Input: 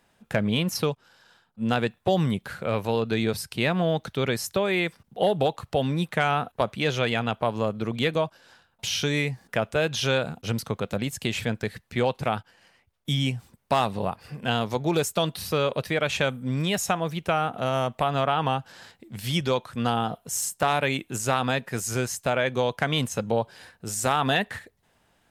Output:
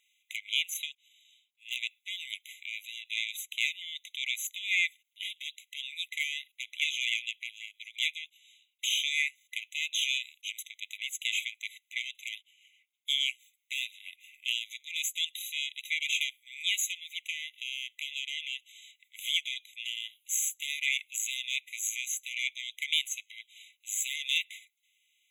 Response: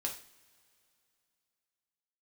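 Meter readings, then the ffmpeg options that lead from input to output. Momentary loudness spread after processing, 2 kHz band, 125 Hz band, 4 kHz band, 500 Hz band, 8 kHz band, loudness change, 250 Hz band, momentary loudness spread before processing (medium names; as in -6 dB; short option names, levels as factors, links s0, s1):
12 LU, -2.5 dB, under -40 dB, +0.5 dB, under -40 dB, -0.5 dB, -6.0 dB, under -40 dB, 6 LU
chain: -af "aeval=exprs='0.355*(cos(1*acos(clip(val(0)/0.355,-1,1)))-cos(1*PI/2))+0.0251*(cos(5*acos(clip(val(0)/0.355,-1,1)))-cos(5*PI/2))+0.0501*(cos(6*acos(clip(val(0)/0.355,-1,1)))-cos(6*PI/2))':c=same,afftfilt=real='re*eq(mod(floor(b*sr/1024/2000),2),1)':imag='im*eq(mod(floor(b*sr/1024/2000),2),1)':win_size=1024:overlap=0.75,volume=0.841"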